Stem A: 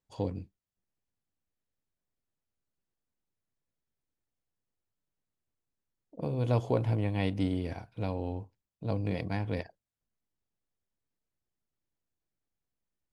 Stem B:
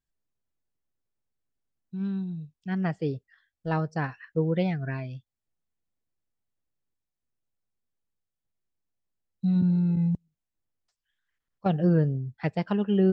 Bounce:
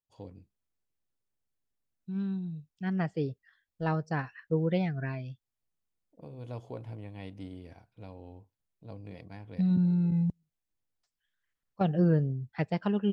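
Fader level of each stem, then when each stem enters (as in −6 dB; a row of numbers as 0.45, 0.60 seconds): −13.0, −2.5 decibels; 0.00, 0.15 seconds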